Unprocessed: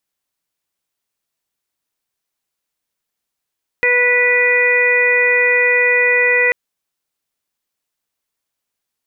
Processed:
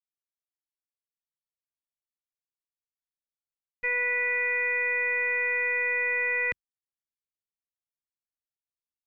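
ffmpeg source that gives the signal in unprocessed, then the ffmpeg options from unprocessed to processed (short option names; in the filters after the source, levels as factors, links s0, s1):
-f lavfi -i "aevalsrc='0.133*sin(2*PI*491*t)+0.0376*sin(2*PI*982*t)+0.0562*sin(2*PI*1473*t)+0.237*sin(2*PI*1964*t)+0.126*sin(2*PI*2455*t)':d=2.69:s=44100"
-af "agate=range=0.0224:threshold=0.447:ratio=3:detection=peak,asubboost=boost=11:cutoff=160,alimiter=limit=0.112:level=0:latency=1"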